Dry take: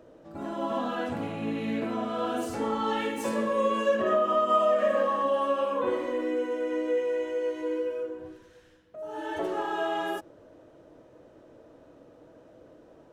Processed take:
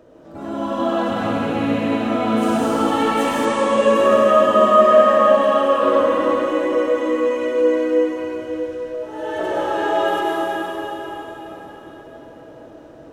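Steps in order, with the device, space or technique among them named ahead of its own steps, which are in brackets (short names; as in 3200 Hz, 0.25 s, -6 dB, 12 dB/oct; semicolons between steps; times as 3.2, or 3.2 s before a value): cathedral (reverb RT60 4.8 s, pre-delay 94 ms, DRR -6.5 dB); 3.45–3.95 steep low-pass 9500 Hz 36 dB/oct; gain +4 dB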